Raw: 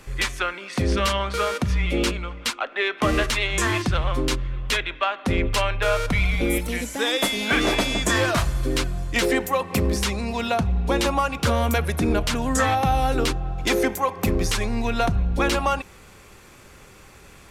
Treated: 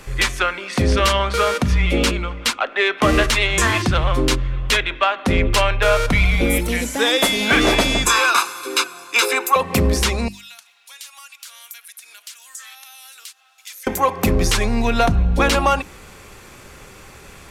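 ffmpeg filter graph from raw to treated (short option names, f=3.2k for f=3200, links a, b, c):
-filter_complex "[0:a]asettb=1/sr,asplit=3[a][b][c];[a]atrim=end=8.054[d];[b]atrim=start=8.05:end=9.56,asetpts=PTS-STARTPTS,afade=t=in:d=0.004:c=qsin,afade=t=out:st=1.506:d=0.004:c=qsin,highpass=f=460:w=0.5412,highpass=f=460:w=1.3066,aecho=1:1:0.8:0.94,atrim=end_sample=66591[e];[c]atrim=start=9.556[f];[d][e]acrossfade=d=0.004:c1=hsin:c2=qsin[g];[g][f]acrossfade=d=0.004:c1=qsin:c2=hsin,asettb=1/sr,asplit=3[h][i][j];[h]atrim=end=10.284[k];[i]atrim=start=10.28:end=13.87,asetpts=PTS-STARTPTS,afade=t=in:d=0.004:c=qsin,afade=t=out:st=3.586:d=0.004:c=qsin,highpass=1.5k,aderivative,acompressor=threshold=-48dB:ratio=2:attack=3.2:release=140:knee=1:detection=peak[l];[j]atrim=start=13.866[m];[k][l]acrossfade=d=0.004:c1=hsin:c2=qsin[n];[n][m]acrossfade=d=0.004:c1=qsin:c2=hsin,bandreject=f=50:t=h:w=6,bandreject=f=100:t=h:w=6,bandreject=f=150:t=h:w=6,bandreject=f=200:t=h:w=6,bandreject=f=250:t=h:w=6,bandreject=f=300:t=h:w=6,bandreject=f=350:t=h:w=6,acontrast=56"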